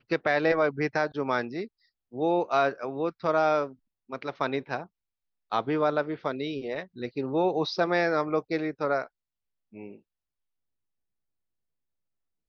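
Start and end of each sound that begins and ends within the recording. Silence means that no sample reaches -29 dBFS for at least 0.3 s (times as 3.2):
2.17–3.66
4.13–4.82
5.52–9.04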